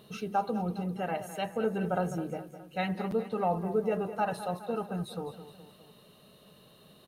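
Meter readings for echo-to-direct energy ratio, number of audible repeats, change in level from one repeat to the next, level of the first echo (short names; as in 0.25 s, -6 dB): -11.5 dB, 3, -5.0 dB, -13.0 dB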